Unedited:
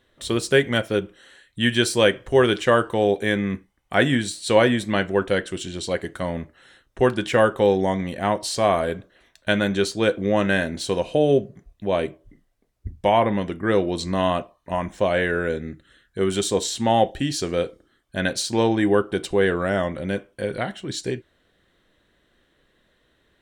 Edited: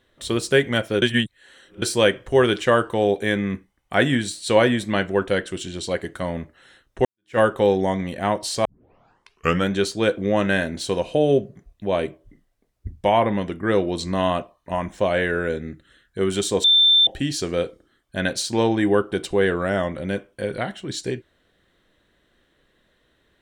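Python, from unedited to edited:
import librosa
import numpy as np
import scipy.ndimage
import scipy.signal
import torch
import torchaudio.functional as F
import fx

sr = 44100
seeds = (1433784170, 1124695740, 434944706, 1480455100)

y = fx.edit(x, sr, fx.reverse_span(start_s=1.02, length_s=0.8),
    fx.fade_in_span(start_s=7.05, length_s=0.33, curve='exp'),
    fx.tape_start(start_s=8.65, length_s=1.05),
    fx.bleep(start_s=16.64, length_s=0.43, hz=3560.0, db=-11.5), tone=tone)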